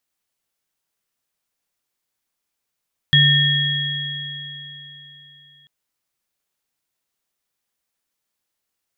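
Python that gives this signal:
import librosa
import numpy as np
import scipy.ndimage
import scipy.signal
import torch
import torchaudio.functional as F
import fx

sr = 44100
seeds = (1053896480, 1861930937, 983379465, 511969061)

y = fx.additive_free(sr, length_s=2.54, hz=144.0, level_db=-14, upper_db=(-2.5, 2.5), decay_s=3.28, upper_decays_s=(3.61, 3.9), upper_hz=(1810.0, 3310.0))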